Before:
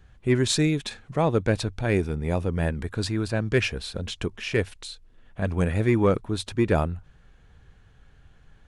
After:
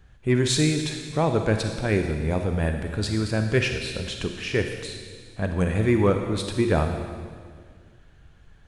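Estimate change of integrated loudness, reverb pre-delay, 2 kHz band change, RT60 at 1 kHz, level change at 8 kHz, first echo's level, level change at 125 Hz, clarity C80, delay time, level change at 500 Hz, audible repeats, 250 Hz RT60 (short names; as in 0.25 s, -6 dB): +1.0 dB, 31 ms, +1.5 dB, 1.8 s, +2.0 dB, none, +1.0 dB, 7.0 dB, none, +1.0 dB, none, 2.2 s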